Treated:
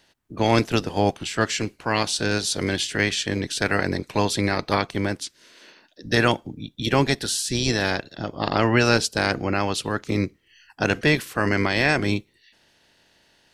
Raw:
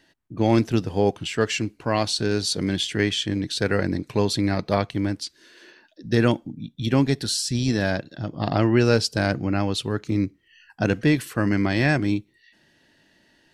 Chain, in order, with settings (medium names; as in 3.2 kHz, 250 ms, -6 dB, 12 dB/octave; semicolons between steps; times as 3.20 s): spectral peaks clipped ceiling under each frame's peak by 14 dB